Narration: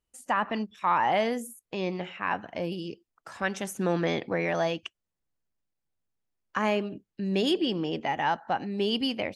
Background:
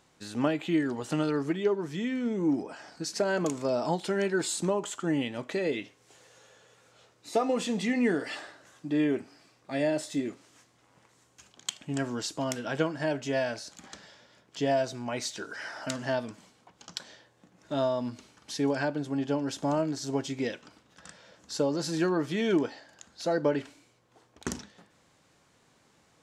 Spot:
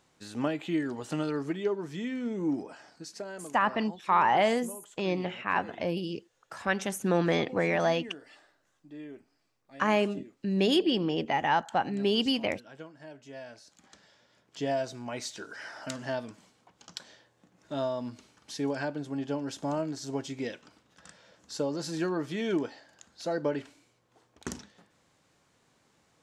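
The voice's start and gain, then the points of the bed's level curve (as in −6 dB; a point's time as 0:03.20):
3.25 s, +1.0 dB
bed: 0:02.65 −3 dB
0:03.61 −17.5 dB
0:13.14 −17.5 dB
0:14.61 −3.5 dB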